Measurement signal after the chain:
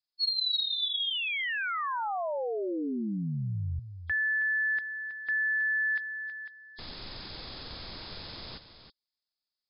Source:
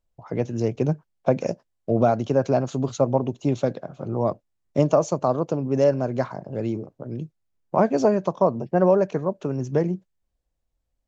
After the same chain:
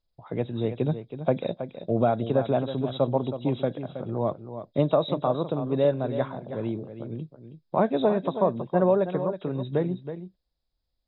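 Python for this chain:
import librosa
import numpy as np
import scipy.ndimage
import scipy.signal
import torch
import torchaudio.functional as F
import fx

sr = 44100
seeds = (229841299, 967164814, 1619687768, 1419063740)

y = fx.freq_compress(x, sr, knee_hz=3200.0, ratio=4.0)
y = y + 10.0 ** (-10.5 / 20.0) * np.pad(y, (int(322 * sr / 1000.0), 0))[:len(y)]
y = y * librosa.db_to_amplitude(-3.5)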